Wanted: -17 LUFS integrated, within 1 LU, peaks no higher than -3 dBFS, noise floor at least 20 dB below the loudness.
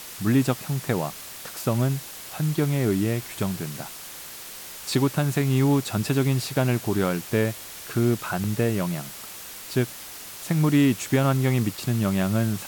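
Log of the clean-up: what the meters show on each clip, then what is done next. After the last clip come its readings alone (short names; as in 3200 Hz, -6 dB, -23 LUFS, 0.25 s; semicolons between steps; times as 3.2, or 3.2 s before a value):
dropouts 1; longest dropout 4.0 ms; noise floor -40 dBFS; noise floor target -45 dBFS; loudness -24.5 LUFS; peak -10.5 dBFS; loudness target -17.0 LUFS
-> interpolate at 8.44, 4 ms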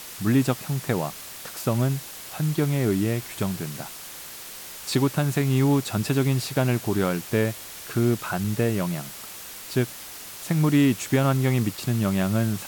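dropouts 0; noise floor -40 dBFS; noise floor target -45 dBFS
-> denoiser 6 dB, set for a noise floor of -40 dBFS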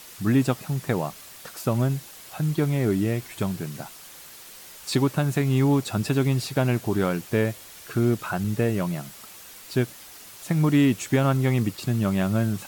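noise floor -45 dBFS; loudness -24.5 LUFS; peak -11.0 dBFS; loudness target -17.0 LUFS
-> gain +7.5 dB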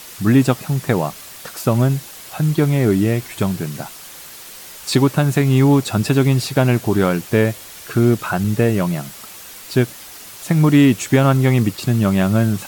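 loudness -17.0 LUFS; peak -3.5 dBFS; noise floor -37 dBFS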